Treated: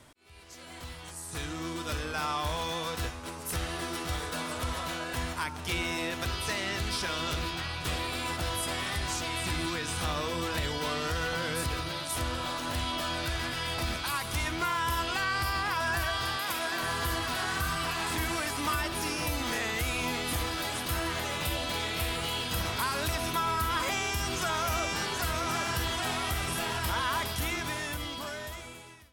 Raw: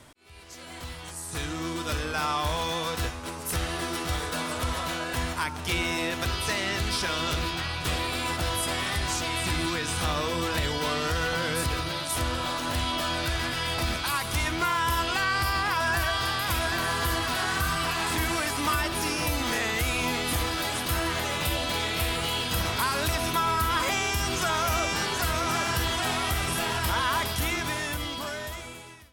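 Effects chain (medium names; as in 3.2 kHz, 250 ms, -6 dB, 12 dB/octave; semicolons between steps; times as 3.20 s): 16.37–16.82 s: high-pass 230 Hz 12 dB/octave; trim -4 dB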